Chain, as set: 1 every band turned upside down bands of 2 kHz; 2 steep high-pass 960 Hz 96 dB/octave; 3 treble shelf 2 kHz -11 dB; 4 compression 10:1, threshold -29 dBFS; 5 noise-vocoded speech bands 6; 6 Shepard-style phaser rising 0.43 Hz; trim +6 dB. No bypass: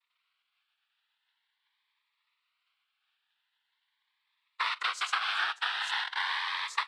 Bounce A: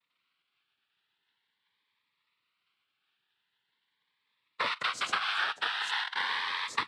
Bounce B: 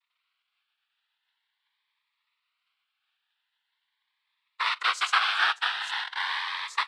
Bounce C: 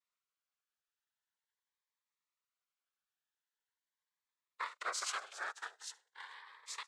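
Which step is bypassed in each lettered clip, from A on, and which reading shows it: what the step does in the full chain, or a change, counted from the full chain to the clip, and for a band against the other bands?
2, 500 Hz band +9.0 dB; 4, mean gain reduction 3.0 dB; 1, 8 kHz band +15.5 dB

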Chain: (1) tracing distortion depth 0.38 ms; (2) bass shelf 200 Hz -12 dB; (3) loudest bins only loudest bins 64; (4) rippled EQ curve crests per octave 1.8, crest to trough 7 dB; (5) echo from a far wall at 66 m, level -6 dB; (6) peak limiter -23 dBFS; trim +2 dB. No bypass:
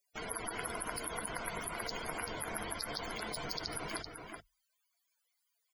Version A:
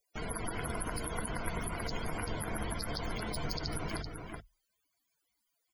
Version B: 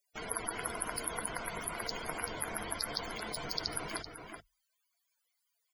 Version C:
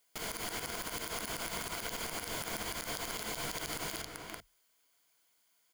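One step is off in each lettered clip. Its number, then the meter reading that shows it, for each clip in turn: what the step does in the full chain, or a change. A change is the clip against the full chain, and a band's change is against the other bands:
2, 125 Hz band +10.5 dB; 6, crest factor change +4.5 dB; 3, 4 kHz band +3.0 dB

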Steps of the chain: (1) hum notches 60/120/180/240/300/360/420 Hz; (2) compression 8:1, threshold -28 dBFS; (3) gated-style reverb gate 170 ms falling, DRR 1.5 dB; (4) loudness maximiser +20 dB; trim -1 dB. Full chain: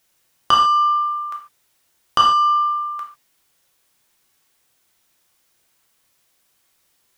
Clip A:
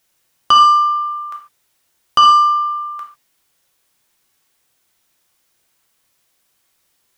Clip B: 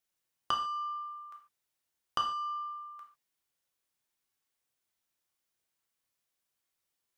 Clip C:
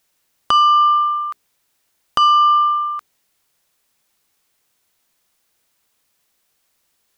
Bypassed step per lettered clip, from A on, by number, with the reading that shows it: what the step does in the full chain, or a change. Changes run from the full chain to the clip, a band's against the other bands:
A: 2, mean gain reduction 3.0 dB; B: 4, crest factor change +6.0 dB; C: 3, momentary loudness spread change -4 LU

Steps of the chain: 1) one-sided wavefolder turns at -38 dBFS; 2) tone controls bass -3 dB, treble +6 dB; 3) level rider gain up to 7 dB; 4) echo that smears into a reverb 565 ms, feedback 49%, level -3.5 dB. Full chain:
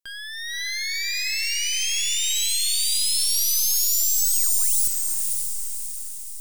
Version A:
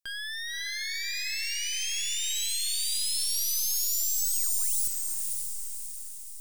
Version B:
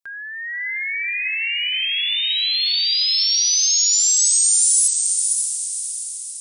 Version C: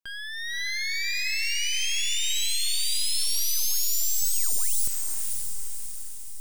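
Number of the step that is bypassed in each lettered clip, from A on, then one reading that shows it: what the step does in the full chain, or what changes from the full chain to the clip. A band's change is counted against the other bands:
3, momentary loudness spread change -2 LU; 1, loudness change +4.5 LU; 2, crest factor change -2.0 dB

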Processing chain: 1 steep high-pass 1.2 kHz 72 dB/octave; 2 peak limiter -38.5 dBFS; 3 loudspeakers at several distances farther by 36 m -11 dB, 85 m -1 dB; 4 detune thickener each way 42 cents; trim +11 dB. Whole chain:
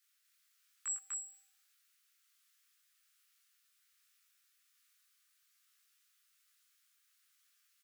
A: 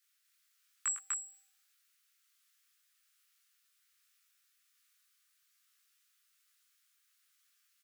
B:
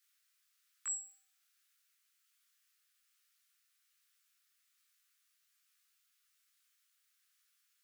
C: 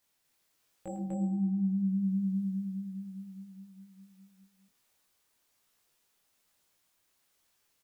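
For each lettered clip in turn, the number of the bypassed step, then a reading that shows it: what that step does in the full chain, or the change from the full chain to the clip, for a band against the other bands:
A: 2, crest factor change +3.0 dB; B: 3, momentary loudness spread change +2 LU; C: 1, crest factor change -11.0 dB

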